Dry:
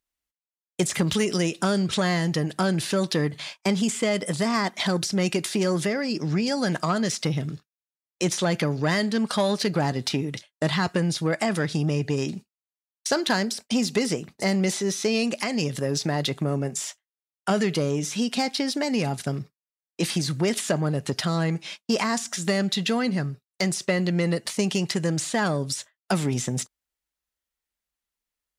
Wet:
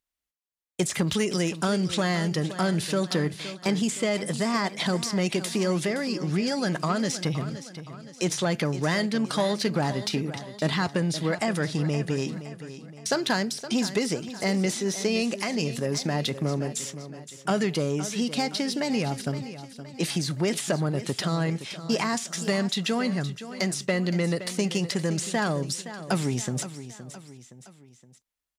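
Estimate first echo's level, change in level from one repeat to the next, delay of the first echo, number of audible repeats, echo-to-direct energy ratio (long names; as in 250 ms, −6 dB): −13.0 dB, −6.5 dB, 518 ms, 3, −12.0 dB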